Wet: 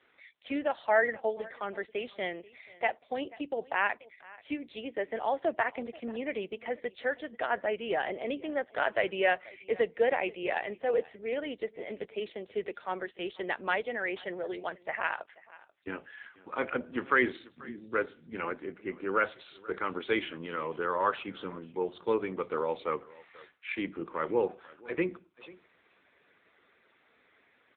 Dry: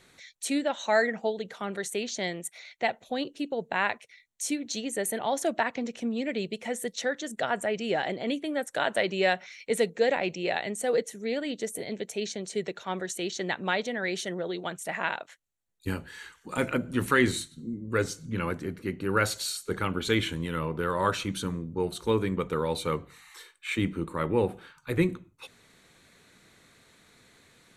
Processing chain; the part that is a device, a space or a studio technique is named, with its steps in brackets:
satellite phone (band-pass filter 360–3,200 Hz; single-tap delay 485 ms −21.5 dB; AMR narrowband 6.7 kbit/s 8,000 Hz)

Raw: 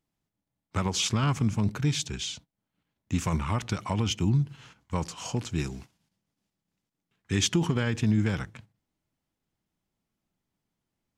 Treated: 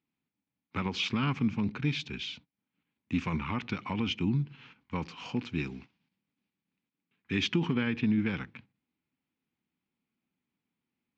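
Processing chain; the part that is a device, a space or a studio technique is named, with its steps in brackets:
guitar cabinet (loudspeaker in its box 98–4,200 Hz, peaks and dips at 110 Hz −6 dB, 250 Hz +7 dB, 630 Hz −8 dB, 2,400 Hz +8 dB)
0:07.73–0:08.28: low-pass filter 5,100 Hz 12 dB per octave
level −3.5 dB

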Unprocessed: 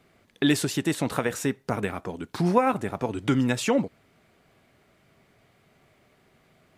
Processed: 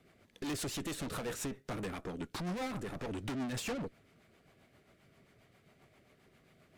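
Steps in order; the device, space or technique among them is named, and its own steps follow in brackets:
overdriven rotary cabinet (tube saturation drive 35 dB, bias 0.55; rotating-speaker cabinet horn 7.5 Hz)
level +1 dB

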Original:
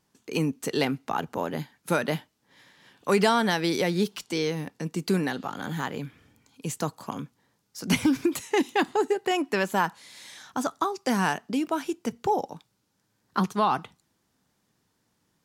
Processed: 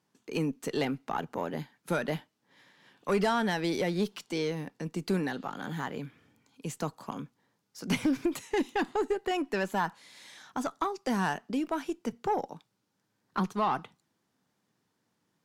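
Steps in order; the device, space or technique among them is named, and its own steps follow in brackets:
high-pass filter 120 Hz
tube preamp driven hard (tube saturation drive 16 dB, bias 0.3; high-shelf EQ 4,900 Hz −6 dB)
level −2.5 dB

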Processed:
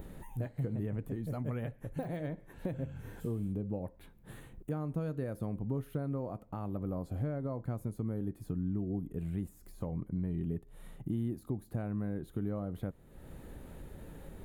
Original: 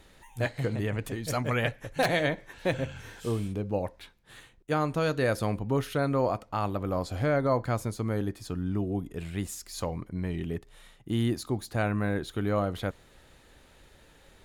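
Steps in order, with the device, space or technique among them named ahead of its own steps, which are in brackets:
upward and downward compression (upward compression, threshold −29 dBFS; downward compressor 6 to 1, threshold −28 dBFS, peak gain reduction 7.5 dB)
de-essing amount 95%
drawn EQ curve 110 Hz 0 dB, 160 Hz +4 dB, 5,400 Hz −21 dB, 13,000 Hz −3 dB
level −3 dB

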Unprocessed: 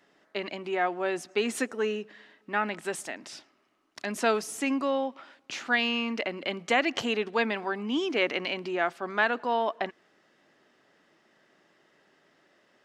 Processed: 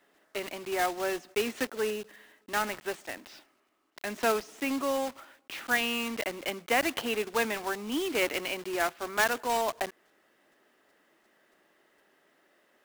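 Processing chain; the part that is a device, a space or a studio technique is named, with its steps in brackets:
early digital voice recorder (band-pass filter 230–3,700 Hz; one scale factor per block 3 bits)
level −1.5 dB

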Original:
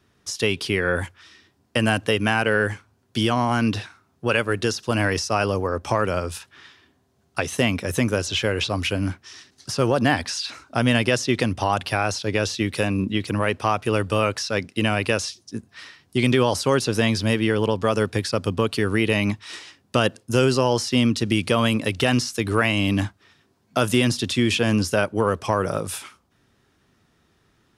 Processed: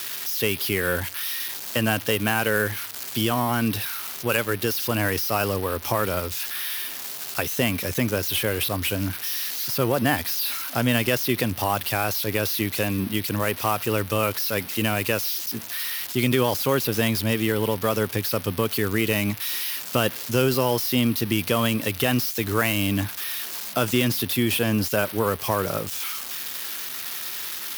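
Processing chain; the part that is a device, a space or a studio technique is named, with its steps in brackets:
budget class-D amplifier (gap after every zero crossing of 0.061 ms; spike at every zero crossing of −14 dBFS)
level −2.5 dB

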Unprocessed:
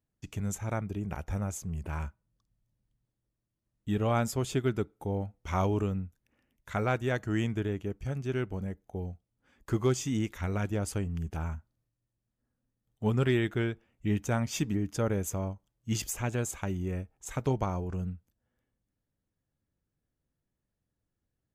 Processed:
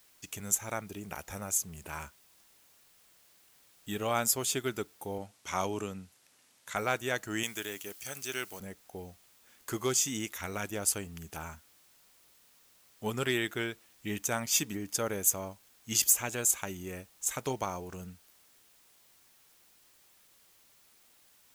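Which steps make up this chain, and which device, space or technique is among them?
turntable without a phono preamp (RIAA equalisation recording; white noise bed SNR 27 dB)
0:05.18–0:06.76: Chebyshev band-pass filter 110–9,700 Hz, order 2
0:07.43–0:08.60: spectral tilt +3 dB per octave

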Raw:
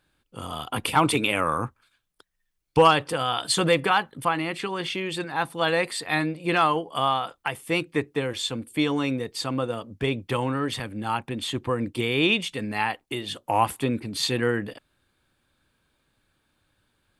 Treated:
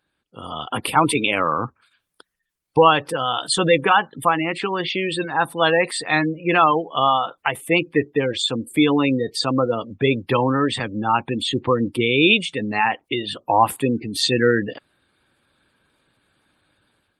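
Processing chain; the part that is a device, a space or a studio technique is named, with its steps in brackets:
0:02.84–0:04.69: noise gate with hold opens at −39 dBFS
noise-suppressed video call (high-pass filter 150 Hz 6 dB per octave; gate on every frequency bin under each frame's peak −20 dB strong; automatic gain control gain up to 10 dB; level −1 dB; Opus 32 kbit/s 48,000 Hz)

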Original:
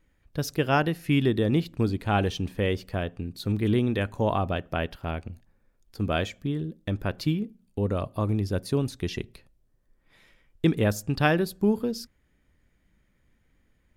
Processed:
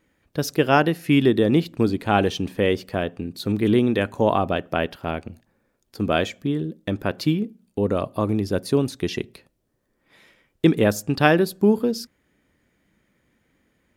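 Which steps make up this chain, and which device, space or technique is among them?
filter by subtraction (in parallel: low-pass filter 300 Hz 12 dB per octave + polarity inversion)
on the sum: level +5 dB

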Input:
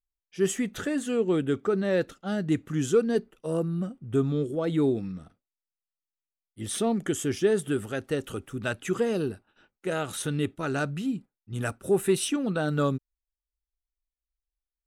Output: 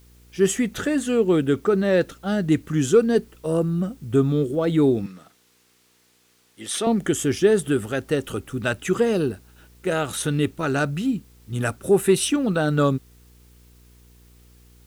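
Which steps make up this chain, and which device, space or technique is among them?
video cassette with head-switching buzz (hum with harmonics 60 Hz, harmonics 8, −58 dBFS −7 dB per octave; white noise bed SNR 37 dB)
0:05.06–0:06.87: meter weighting curve A
level +6 dB

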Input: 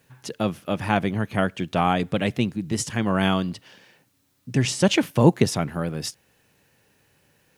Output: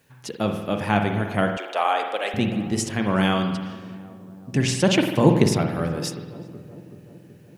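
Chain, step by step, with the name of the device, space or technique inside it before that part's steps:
mains-hum notches 60/120/180 Hz
dub delay into a spring reverb (feedback echo with a low-pass in the loop 377 ms, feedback 67%, low-pass 1,000 Hz, level −16 dB; spring reverb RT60 1.1 s, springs 48 ms, chirp 35 ms, DRR 4.5 dB)
0:01.57–0:02.34: high-pass filter 450 Hz 24 dB per octave

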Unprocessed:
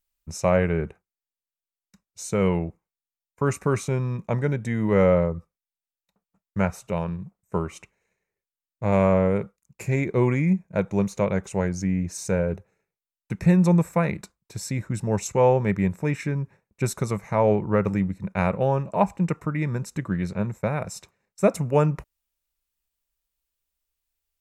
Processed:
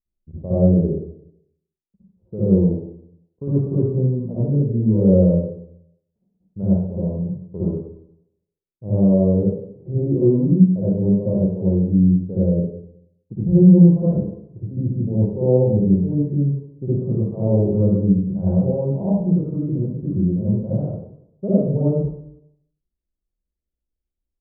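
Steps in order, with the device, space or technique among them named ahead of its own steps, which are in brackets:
next room (low-pass filter 470 Hz 24 dB per octave; convolution reverb RT60 0.75 s, pre-delay 54 ms, DRR −10.5 dB)
level −5.5 dB

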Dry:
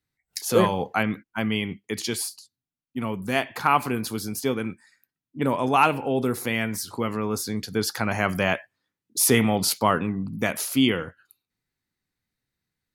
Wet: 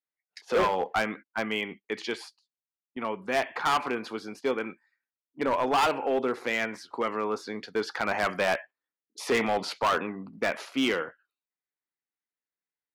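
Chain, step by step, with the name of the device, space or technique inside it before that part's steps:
walkie-talkie (band-pass filter 420–2,500 Hz; hard clipping −22 dBFS, distortion −7 dB; noise gate −46 dBFS, range −13 dB)
level +2 dB

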